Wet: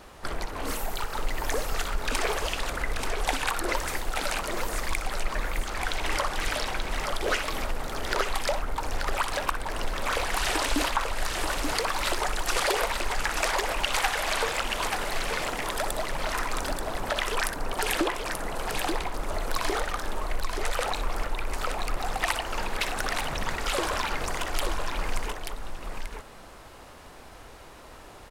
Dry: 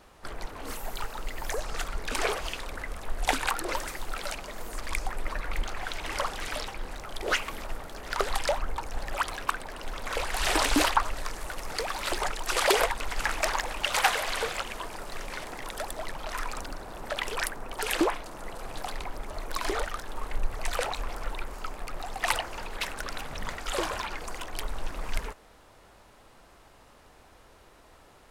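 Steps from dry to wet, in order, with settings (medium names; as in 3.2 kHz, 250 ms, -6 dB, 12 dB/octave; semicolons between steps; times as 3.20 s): compression 4:1, threshold -32 dBFS, peak gain reduction 12.5 dB; multi-tap echo 61/883 ms -11.5/-5 dB; trim +7 dB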